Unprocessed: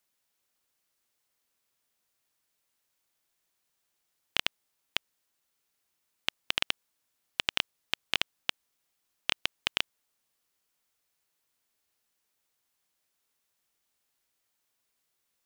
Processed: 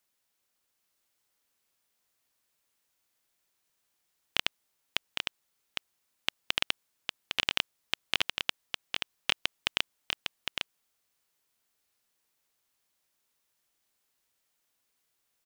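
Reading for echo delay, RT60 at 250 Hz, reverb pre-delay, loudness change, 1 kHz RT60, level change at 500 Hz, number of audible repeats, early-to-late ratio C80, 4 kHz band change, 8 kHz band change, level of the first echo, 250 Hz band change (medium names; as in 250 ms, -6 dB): 807 ms, no reverb, no reverb, -0.5 dB, no reverb, +1.0 dB, 1, no reverb, +1.0 dB, +1.0 dB, -5.0 dB, +1.0 dB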